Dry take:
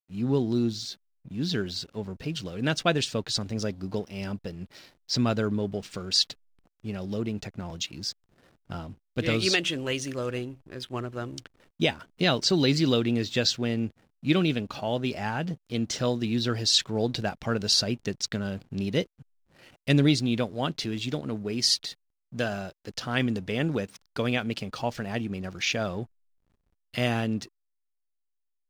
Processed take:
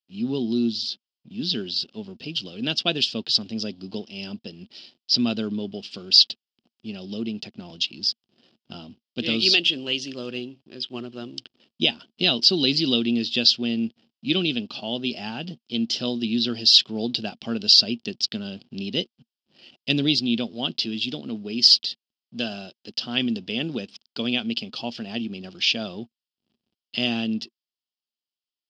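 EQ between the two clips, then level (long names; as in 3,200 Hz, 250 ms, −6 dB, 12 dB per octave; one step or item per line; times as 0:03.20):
loudspeaker in its box 200–7,900 Hz, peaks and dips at 230 Hz +9 dB, 360 Hz +5 dB, 710 Hz +4 dB, 3,100 Hz +7 dB, 5,100 Hz +9 dB
low-shelf EQ 300 Hz +9.5 dB
flat-topped bell 3,600 Hz +12 dB 1.2 octaves
−8.5 dB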